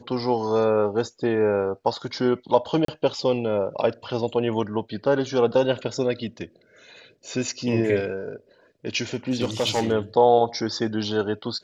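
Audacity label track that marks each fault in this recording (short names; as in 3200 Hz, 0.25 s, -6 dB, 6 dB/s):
2.850000	2.880000	gap 33 ms
9.140000	9.920000	clipped -17 dBFS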